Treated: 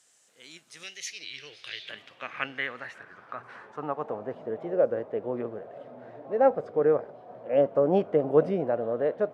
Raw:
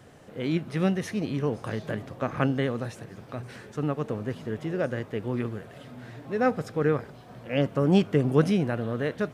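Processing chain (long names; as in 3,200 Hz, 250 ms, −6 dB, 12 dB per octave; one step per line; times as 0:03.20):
0:00.83–0:01.90: drawn EQ curve 140 Hz 0 dB, 230 Hz −17 dB, 340 Hz +1 dB, 990 Hz −10 dB, 2,300 Hz +10 dB, 7,200 Hz −2 dB
band-pass filter sweep 7,500 Hz → 600 Hz, 0:00.66–0:04.50
wow of a warped record 33 1/3 rpm, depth 100 cents
level +7.5 dB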